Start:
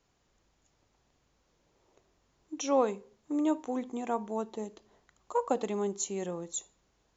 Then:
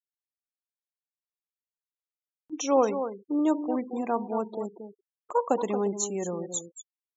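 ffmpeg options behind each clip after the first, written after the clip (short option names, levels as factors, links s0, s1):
-filter_complex "[0:a]asplit=2[s0][s1];[s1]adelay=227.4,volume=0.355,highshelf=f=4000:g=-5.12[s2];[s0][s2]amix=inputs=2:normalize=0,afftfilt=real='re*gte(hypot(re,im),0.00794)':imag='im*gte(hypot(re,im),0.00794)':win_size=1024:overlap=0.75,acompressor=mode=upward:threshold=0.00631:ratio=2.5,volume=1.58"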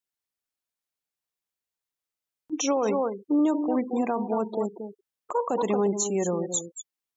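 -af "alimiter=limit=0.0794:level=0:latency=1:release=27,volume=1.88"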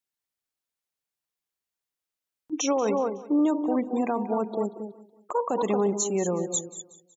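-af "aecho=1:1:185|370|555:0.126|0.0529|0.0222"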